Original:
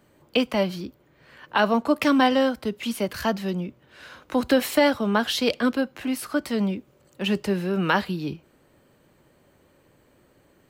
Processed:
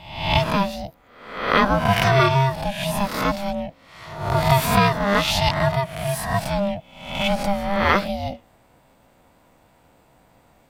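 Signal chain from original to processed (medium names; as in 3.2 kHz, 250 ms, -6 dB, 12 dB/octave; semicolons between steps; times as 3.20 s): reverse spectral sustain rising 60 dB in 0.73 s; ring modulator 400 Hz; trim +4 dB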